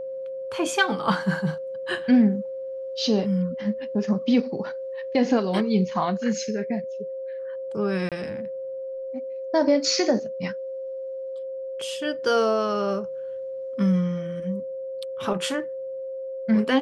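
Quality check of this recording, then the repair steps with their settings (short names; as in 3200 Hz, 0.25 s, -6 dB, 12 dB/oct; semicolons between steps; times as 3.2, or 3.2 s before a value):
tone 530 Hz -30 dBFS
8.09–8.12 gap 27 ms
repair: notch 530 Hz, Q 30; interpolate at 8.09, 27 ms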